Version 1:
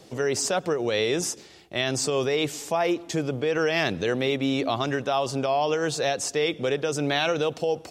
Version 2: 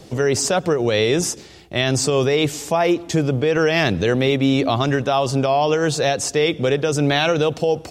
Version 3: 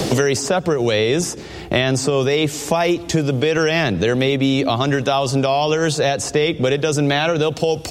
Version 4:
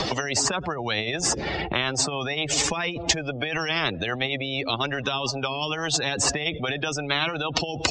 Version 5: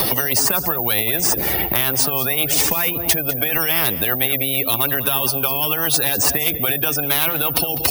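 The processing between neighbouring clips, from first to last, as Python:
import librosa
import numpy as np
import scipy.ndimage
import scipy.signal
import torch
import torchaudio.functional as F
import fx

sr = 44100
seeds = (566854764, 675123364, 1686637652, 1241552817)

y1 = fx.low_shelf(x, sr, hz=140.0, db=11.5)
y1 = y1 * 10.0 ** (5.5 / 20.0)
y2 = fx.band_squash(y1, sr, depth_pct=100)
y3 = fx.spec_expand(y2, sr, power=2.1)
y3 = scipy.ndimage.gaussian_filter1d(y3, 1.6, mode='constant')
y3 = fx.spectral_comp(y3, sr, ratio=10.0)
y4 = fx.fold_sine(y3, sr, drive_db=7, ceiling_db=-6.0)
y4 = y4 + 10.0 ** (-16.0 / 20.0) * np.pad(y4, (int(200 * sr / 1000.0), 0))[:len(y4)]
y4 = (np.kron(scipy.signal.resample_poly(y4, 1, 3), np.eye(3)[0]) * 3)[:len(y4)]
y4 = y4 * 10.0 ** (-7.0 / 20.0)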